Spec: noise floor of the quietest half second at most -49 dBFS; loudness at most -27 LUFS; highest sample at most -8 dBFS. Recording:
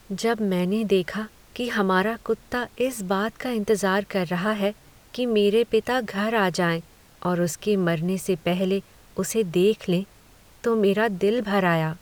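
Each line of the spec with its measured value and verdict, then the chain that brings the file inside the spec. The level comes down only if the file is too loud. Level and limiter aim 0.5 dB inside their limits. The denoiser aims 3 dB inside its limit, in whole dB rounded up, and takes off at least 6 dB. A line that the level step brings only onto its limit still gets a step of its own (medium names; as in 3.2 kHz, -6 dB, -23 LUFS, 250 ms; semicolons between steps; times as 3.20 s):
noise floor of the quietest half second -52 dBFS: pass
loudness -24.0 LUFS: fail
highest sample -9.5 dBFS: pass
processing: trim -3.5 dB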